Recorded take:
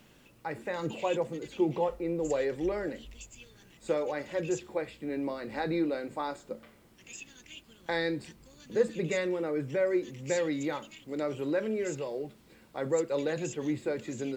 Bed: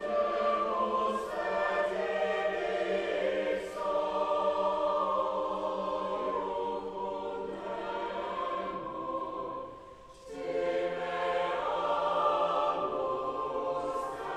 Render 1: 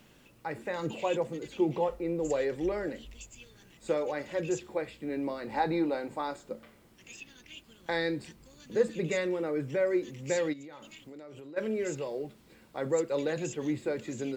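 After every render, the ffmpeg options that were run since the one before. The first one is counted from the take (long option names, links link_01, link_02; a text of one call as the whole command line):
ffmpeg -i in.wav -filter_complex "[0:a]asettb=1/sr,asplit=3[link_01][link_02][link_03];[link_01]atrim=end=5.464[link_04];[link_02]atrim=start=5.46:end=6.16,asetpts=PTS-STARTPTS,afade=type=in:duration=0.004:curve=qsin,afade=type=out:start_time=0.696:duration=0.004:curve=qsin,equalizer=frequency=870:width_type=o:width=0.35:gain=12[link_05];[link_03]atrim=start=6.156[link_06];[link_04][link_05]acrossfade=duration=0.004:curve1=hsin:curve2=qsin[link_07];[link_07][link_06]acrossfade=duration=0.004:curve1=qsin:curve2=hsin,asettb=1/sr,asplit=3[link_08][link_09][link_10];[link_08]atrim=end=7.134[link_11];[link_09]atrim=start=7.13:end=7.54,asetpts=PTS-STARTPTS,afade=type=in:duration=0.004:curve=qsin,afade=type=out:start_time=0.406:duration=0.004:curve=qsin,equalizer=frequency=7100:width=5.6:gain=-11.5[link_12];[link_10]atrim=start=7.536[link_13];[link_11][link_12]acrossfade=duration=0.004:curve1=hsin:curve2=qsin[link_14];[link_14][link_13]acrossfade=duration=0.004:curve1=qsin:curve2=hsin,asplit=3[link_15][link_16][link_17];[link_15]afade=type=out:start_time=10.52:duration=0.02[link_18];[link_16]acompressor=threshold=-43dB:ratio=12:attack=3.2:release=140:knee=1:detection=peak,afade=type=in:start_time=10.52:duration=0.02,afade=type=out:start_time=11.56:duration=0.02[link_19];[link_17]afade=type=in:start_time=11.56:duration=0.02[link_20];[link_18][link_19][link_20]amix=inputs=3:normalize=0" out.wav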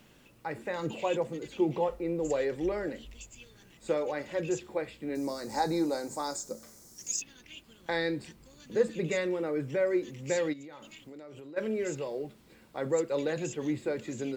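ffmpeg -i in.wav -filter_complex "[0:a]asettb=1/sr,asplit=3[link_01][link_02][link_03];[link_01]atrim=end=5.154[link_04];[link_02]atrim=start=5.15:end=7.22,asetpts=PTS-STARTPTS,afade=type=in:duration=0.004:curve=qsin,afade=type=out:start_time=2.066:duration=0.004:curve=qsin,highshelf=frequency=4200:width_type=q:width=3:gain=13.5[link_05];[link_03]atrim=start=7.216[link_06];[link_04][link_05]acrossfade=duration=0.004:curve1=hsin:curve2=qsin[link_07];[link_07][link_06]acrossfade=duration=0.004:curve1=qsin:curve2=hsin" out.wav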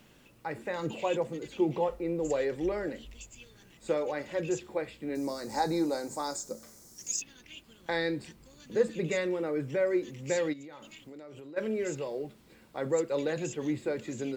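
ffmpeg -i in.wav -af anull out.wav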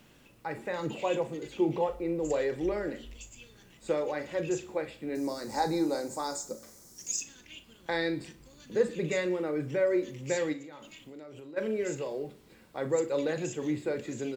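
ffmpeg -i in.wav -filter_complex "[0:a]asplit=2[link_01][link_02];[link_02]adelay=39,volume=-12.5dB[link_03];[link_01][link_03]amix=inputs=2:normalize=0,aecho=1:1:60|120|180|240:0.119|0.063|0.0334|0.0177" out.wav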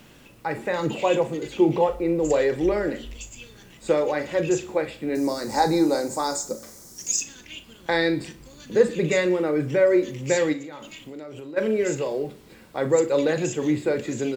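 ffmpeg -i in.wav -af "volume=8.5dB" out.wav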